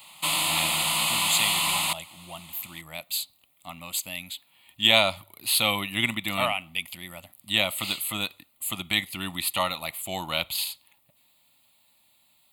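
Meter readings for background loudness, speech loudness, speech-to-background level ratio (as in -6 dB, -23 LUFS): -23.5 LUFS, -27.0 LUFS, -3.5 dB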